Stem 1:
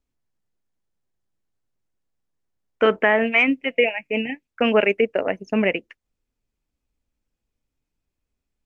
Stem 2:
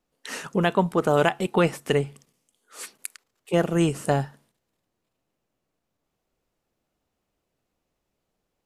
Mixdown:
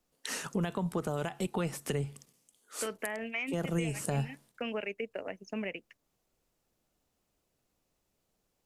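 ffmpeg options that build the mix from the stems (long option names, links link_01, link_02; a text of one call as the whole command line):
ffmpeg -i stem1.wav -i stem2.wav -filter_complex "[0:a]aemphasis=mode=production:type=cd,volume=-14dB,asplit=2[link_01][link_02];[1:a]alimiter=limit=-14dB:level=0:latency=1:release=69,volume=-2dB[link_03];[link_02]apad=whole_len=381599[link_04];[link_03][link_04]sidechaincompress=threshold=-31dB:ratio=8:attack=49:release=400[link_05];[link_01][link_05]amix=inputs=2:normalize=0,bass=frequency=250:gain=1,treble=frequency=4000:gain=6,acrossover=split=150[link_06][link_07];[link_07]acompressor=threshold=-35dB:ratio=2.5[link_08];[link_06][link_08]amix=inputs=2:normalize=0" out.wav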